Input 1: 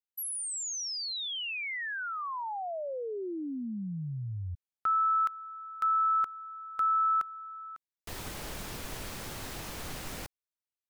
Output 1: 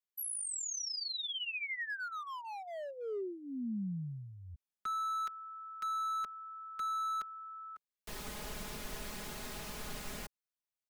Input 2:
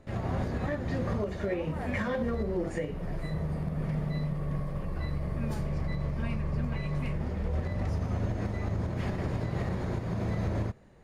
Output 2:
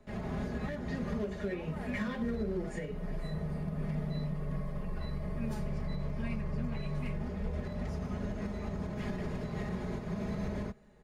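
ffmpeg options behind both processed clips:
-filter_complex "[0:a]aecho=1:1:4.8:0.67,acrossover=split=290|430|1500[a][b][c][d];[c]asoftclip=type=hard:threshold=-40dB[e];[a][b][e][d]amix=inputs=4:normalize=0,volume=-5dB"

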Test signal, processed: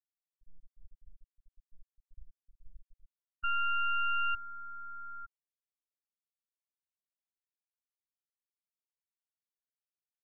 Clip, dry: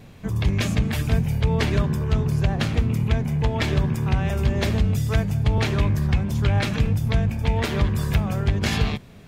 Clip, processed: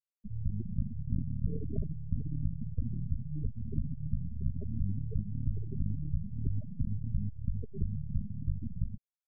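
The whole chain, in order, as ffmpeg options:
-af "aeval=exprs='max(val(0),0)':c=same,afftfilt=real='re*gte(hypot(re,im),0.224)':imag='im*gte(hypot(re,im),0.224)':win_size=1024:overlap=0.75,volume=-8dB"

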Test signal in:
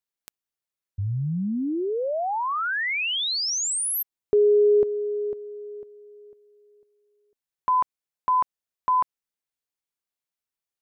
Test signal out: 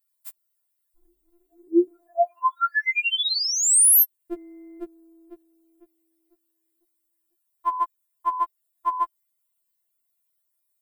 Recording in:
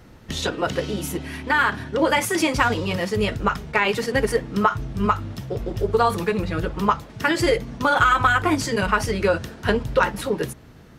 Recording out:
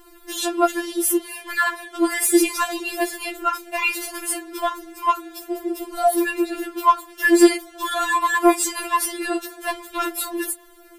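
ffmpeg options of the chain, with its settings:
-af "aexciter=amount=2.3:drive=9.2:freq=8.1k,acontrast=68,afftfilt=real='re*4*eq(mod(b,16),0)':imag='im*4*eq(mod(b,16),0)':win_size=2048:overlap=0.75,volume=-2.5dB"

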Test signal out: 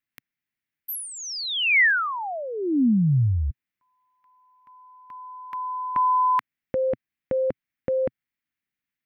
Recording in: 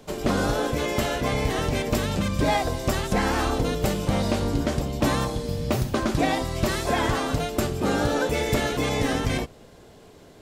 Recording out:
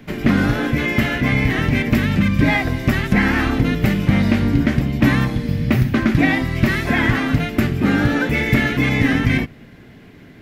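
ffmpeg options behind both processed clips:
-af "equalizer=f=125:t=o:w=1:g=6,equalizer=f=250:t=o:w=1:g=8,equalizer=f=500:t=o:w=1:g=-7,equalizer=f=1k:t=o:w=1:g=-5,equalizer=f=2k:t=o:w=1:g=12,equalizer=f=4k:t=o:w=1:g=-3,equalizer=f=8k:t=o:w=1:g=-12,volume=3.5dB"

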